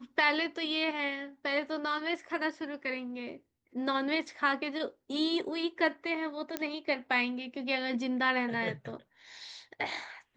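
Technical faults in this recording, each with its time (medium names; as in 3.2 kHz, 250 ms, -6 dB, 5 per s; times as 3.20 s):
6.57 s: pop -16 dBFS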